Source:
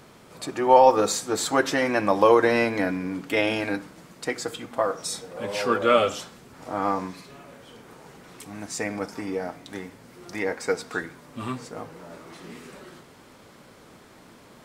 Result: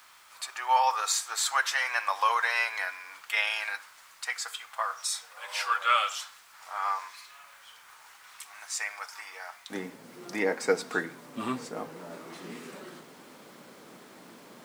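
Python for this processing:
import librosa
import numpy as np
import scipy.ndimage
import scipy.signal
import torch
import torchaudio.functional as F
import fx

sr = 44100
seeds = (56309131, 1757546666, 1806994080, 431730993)

y = fx.highpass(x, sr, hz=fx.steps((0.0, 1000.0), (9.7, 160.0)), slope=24)
y = fx.quant_dither(y, sr, seeds[0], bits=10, dither='none')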